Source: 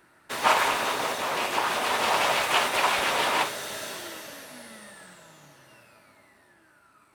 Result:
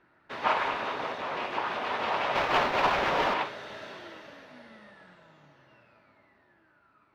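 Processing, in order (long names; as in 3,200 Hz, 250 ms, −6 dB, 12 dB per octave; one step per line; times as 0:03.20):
0:02.35–0:03.34: each half-wave held at its own peak
high-frequency loss of the air 260 metres
level −3.5 dB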